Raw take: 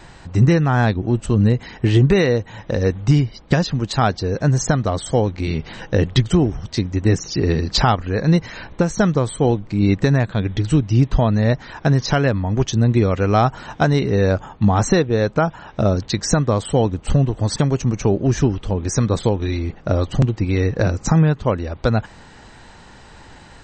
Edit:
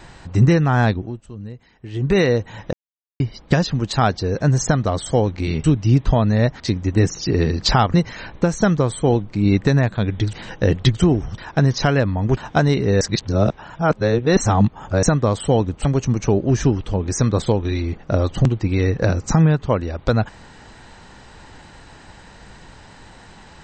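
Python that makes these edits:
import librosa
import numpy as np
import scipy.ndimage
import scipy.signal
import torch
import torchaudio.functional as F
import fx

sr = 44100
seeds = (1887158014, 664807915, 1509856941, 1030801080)

y = fx.edit(x, sr, fx.fade_down_up(start_s=0.93, length_s=1.24, db=-18.5, fade_s=0.32, curve='qua'),
    fx.silence(start_s=2.73, length_s=0.47),
    fx.swap(start_s=5.64, length_s=1.05, other_s=10.7, other_length_s=0.96),
    fx.cut(start_s=8.03, length_s=0.28),
    fx.cut(start_s=12.65, length_s=0.97),
    fx.reverse_span(start_s=14.26, length_s=2.02),
    fx.cut(start_s=17.1, length_s=0.52), tone=tone)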